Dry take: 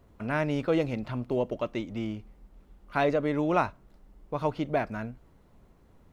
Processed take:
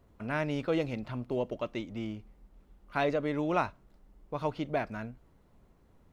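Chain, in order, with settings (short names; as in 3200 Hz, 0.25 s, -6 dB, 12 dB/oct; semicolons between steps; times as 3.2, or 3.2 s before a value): dynamic EQ 3700 Hz, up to +3 dB, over -45 dBFS, Q 0.72; gain -4 dB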